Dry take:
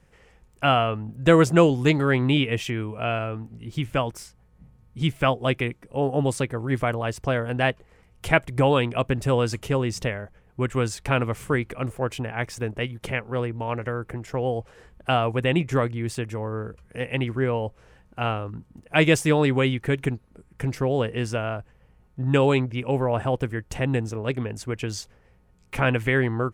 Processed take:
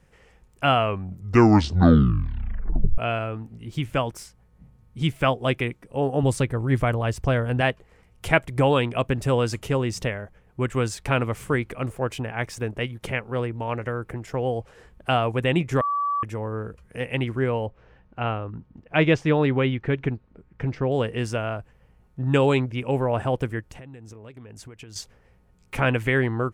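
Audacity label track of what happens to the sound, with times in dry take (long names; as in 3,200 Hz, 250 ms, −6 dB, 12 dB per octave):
0.760000	0.760000	tape stop 2.22 s
6.230000	7.610000	low-shelf EQ 110 Hz +11.5 dB
15.810000	16.230000	beep over 1,150 Hz −21.5 dBFS
17.660000	20.920000	high-frequency loss of the air 210 metres
23.600000	24.960000	downward compressor 16 to 1, threshold −38 dBFS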